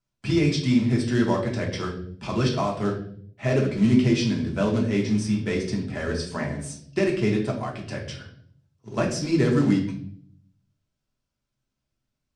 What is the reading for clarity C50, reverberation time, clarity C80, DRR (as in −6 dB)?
7.0 dB, 0.60 s, 10.5 dB, −2.5 dB